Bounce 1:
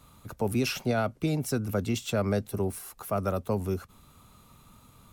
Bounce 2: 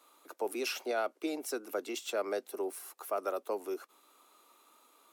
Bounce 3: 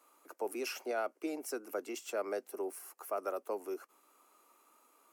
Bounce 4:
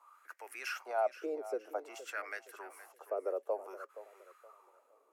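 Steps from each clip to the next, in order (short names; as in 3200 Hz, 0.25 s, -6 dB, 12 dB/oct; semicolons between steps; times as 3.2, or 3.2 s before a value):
elliptic high-pass 320 Hz, stop band 70 dB; gain -3.5 dB
bell 3700 Hz -11.5 dB 0.41 oct; gain -2.5 dB
wah 0.54 Hz 450–1900 Hz, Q 4.1; RIAA curve recording; warbling echo 0.47 s, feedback 32%, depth 78 cents, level -14.5 dB; gain +10 dB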